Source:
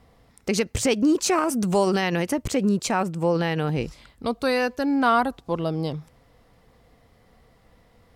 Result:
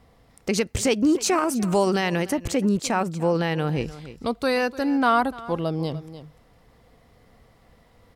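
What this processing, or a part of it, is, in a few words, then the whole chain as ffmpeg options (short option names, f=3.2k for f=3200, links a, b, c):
ducked delay: -filter_complex "[0:a]asplit=3[a][b][c];[b]adelay=297,volume=-4.5dB[d];[c]apad=whole_len=372853[e];[d][e]sidechaincompress=threshold=-31dB:ratio=10:attack=12:release=1260[f];[a][f]amix=inputs=2:normalize=0"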